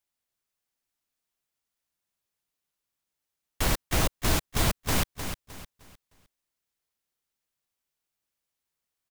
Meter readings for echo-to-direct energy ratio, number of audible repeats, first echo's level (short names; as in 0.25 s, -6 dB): -8.0 dB, 3, -8.5 dB